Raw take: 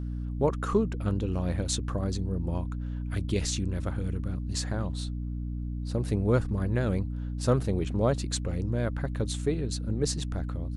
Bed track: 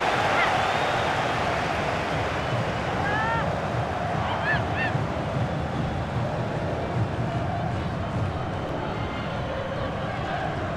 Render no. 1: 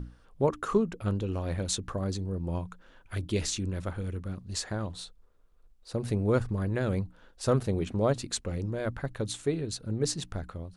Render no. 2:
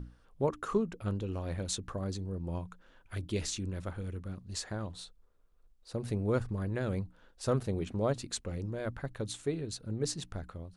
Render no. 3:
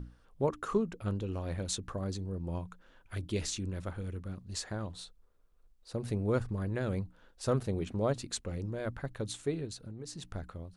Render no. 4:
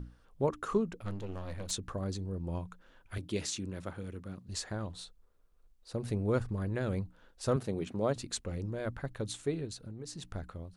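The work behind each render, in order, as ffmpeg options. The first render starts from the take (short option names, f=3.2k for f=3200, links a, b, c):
-af "bandreject=f=60:t=h:w=6,bandreject=f=120:t=h:w=6,bandreject=f=180:t=h:w=6,bandreject=f=240:t=h:w=6,bandreject=f=300:t=h:w=6"
-af "volume=-4.5dB"
-filter_complex "[0:a]asettb=1/sr,asplit=3[a][b][c];[a]atrim=end=9.664[d];[b]atrim=start=9.66:end=10.26,asetpts=PTS-STARTPTS,afade=t=in:d=0.004:c=qsin,afade=t=out:st=0.596:d=0.004:c=qsin,acompressor=threshold=-39dB:ratio=12:attack=3.2:release=140:knee=1:detection=peak[e];[c]atrim=start=10.256[f];[d][e]acrossfade=d=0.004:c1=hsin:c2=qsin[g];[g][f]acrossfade=d=0.004:c1=qsin:c2=hsin"
-filter_complex "[0:a]asettb=1/sr,asplit=3[a][b][c];[a]atrim=end=1.014[d];[b]atrim=start=1.01:end=1.71,asetpts=PTS-STARTPTS,afade=t=in:d=0.004:c=qsin,afade=t=out:st=0.696:d=0.004:c=qsin,aeval=exprs='if(lt(val(0),0),0.251*val(0),val(0))':c=same[e];[c]atrim=start=1.706[f];[d][e]acrossfade=d=0.004:c1=hsin:c2=qsin[g];[g][f]acrossfade=d=0.004:c1=qsin:c2=hsin,asettb=1/sr,asplit=3[h][i][j];[h]atrim=end=3.184[k];[i]atrim=start=3.18:end=4.49,asetpts=PTS-STARTPTS,afade=t=in:d=0.004:c=qsin,afade=t=out:st=1.306:d=0.004:c=qsin,highpass=120[l];[j]atrim=start=4.486[m];[k][l]acrossfade=d=0.004:c1=hsin:c2=qsin[n];[n][m]acrossfade=d=0.004:c1=qsin:c2=hsin,asettb=1/sr,asplit=3[o][p][q];[o]atrim=end=7.564[r];[p]atrim=start=7.56:end=8.16,asetpts=PTS-STARTPTS,afade=t=in:d=0.004:c=qsin,afade=t=out:st=0.596:d=0.004:c=qsin,highpass=130[s];[q]atrim=start=8.156[t];[r][s]acrossfade=d=0.004:c1=hsin:c2=qsin[u];[u][t]acrossfade=d=0.004:c1=qsin:c2=hsin"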